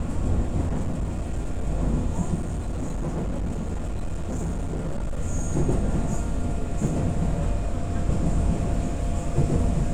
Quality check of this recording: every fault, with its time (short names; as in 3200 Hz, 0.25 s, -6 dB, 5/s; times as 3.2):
0.63–1.65 clipped -22 dBFS
2.34–5.17 clipped -24 dBFS
6.87 gap 2.6 ms